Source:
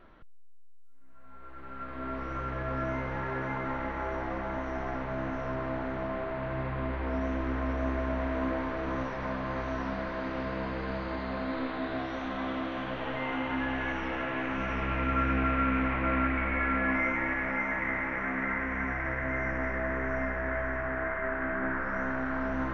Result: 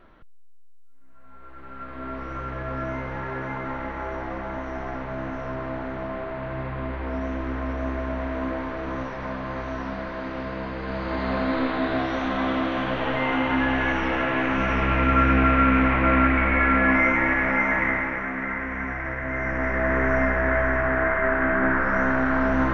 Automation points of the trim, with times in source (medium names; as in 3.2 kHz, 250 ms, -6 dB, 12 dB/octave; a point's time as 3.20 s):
10.79 s +2.5 dB
11.28 s +9 dB
17.82 s +9 dB
18.30 s +2.5 dB
19.24 s +2.5 dB
19.98 s +10 dB